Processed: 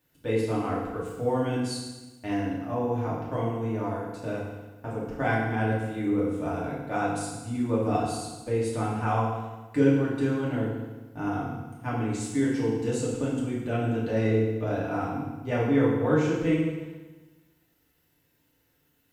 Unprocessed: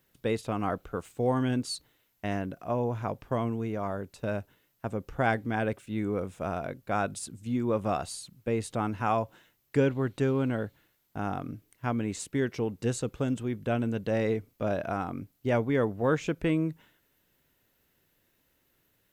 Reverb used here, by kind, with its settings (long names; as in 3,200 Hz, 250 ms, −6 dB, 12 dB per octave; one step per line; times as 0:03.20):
feedback delay network reverb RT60 1.2 s, low-frequency decay 1.2×, high-frequency decay 0.9×, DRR −7 dB
level −6.5 dB